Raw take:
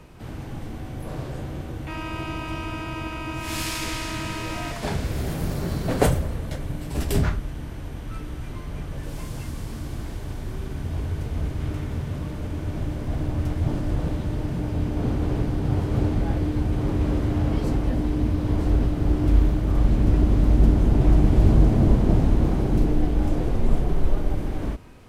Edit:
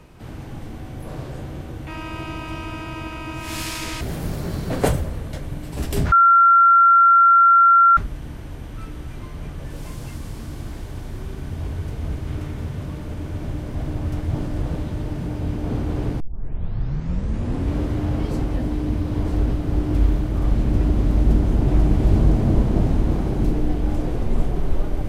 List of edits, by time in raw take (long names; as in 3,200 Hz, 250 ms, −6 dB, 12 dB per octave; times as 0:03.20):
0:04.01–0:05.19: remove
0:07.30: insert tone 1,370 Hz −9 dBFS 1.85 s
0:15.53: tape start 1.56 s